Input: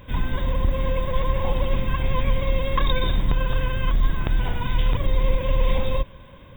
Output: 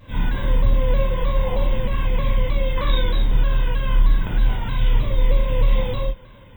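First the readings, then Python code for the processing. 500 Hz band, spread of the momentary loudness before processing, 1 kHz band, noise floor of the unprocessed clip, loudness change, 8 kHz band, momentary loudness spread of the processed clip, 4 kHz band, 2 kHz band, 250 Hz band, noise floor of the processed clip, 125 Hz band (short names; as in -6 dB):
+1.0 dB, 3 LU, -1.5 dB, -44 dBFS, +2.5 dB, n/a, 4 LU, 0.0 dB, 0.0 dB, +0.5 dB, -44 dBFS, +2.0 dB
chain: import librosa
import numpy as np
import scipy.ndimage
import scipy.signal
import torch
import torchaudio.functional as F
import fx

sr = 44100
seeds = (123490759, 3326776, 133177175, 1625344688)

y = fx.rider(x, sr, range_db=10, speed_s=2.0)
y = fx.rev_gated(y, sr, seeds[0], gate_ms=130, shape='flat', drr_db=-7.0)
y = fx.vibrato_shape(y, sr, shape='saw_down', rate_hz=3.2, depth_cents=100.0)
y = y * 10.0 ** (-8.0 / 20.0)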